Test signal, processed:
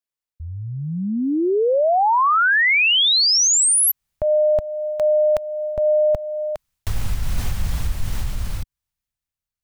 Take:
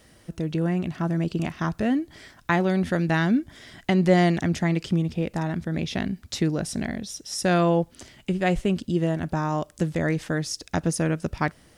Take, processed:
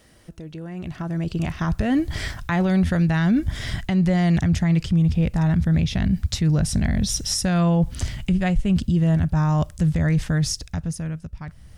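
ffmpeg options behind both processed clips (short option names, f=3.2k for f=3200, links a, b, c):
-af "asubboost=boost=12:cutoff=100,areverse,acompressor=threshold=-26dB:ratio=6,areverse,alimiter=level_in=4.5dB:limit=-24dB:level=0:latency=1:release=274,volume=-4.5dB,dynaudnorm=f=120:g=21:m=15.5dB"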